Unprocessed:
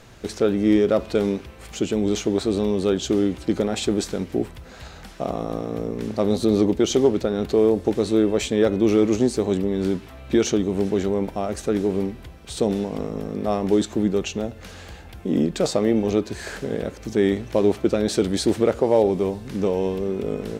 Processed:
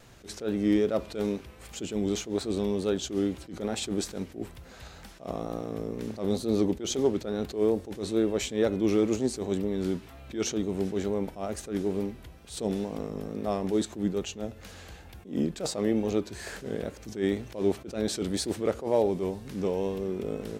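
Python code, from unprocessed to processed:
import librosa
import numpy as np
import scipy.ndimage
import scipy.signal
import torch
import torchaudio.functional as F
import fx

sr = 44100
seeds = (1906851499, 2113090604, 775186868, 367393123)

y = fx.high_shelf(x, sr, hz=7500.0, db=5.5)
y = fx.wow_flutter(y, sr, seeds[0], rate_hz=2.1, depth_cents=50.0)
y = fx.attack_slew(y, sr, db_per_s=170.0)
y = y * librosa.db_to_amplitude(-6.5)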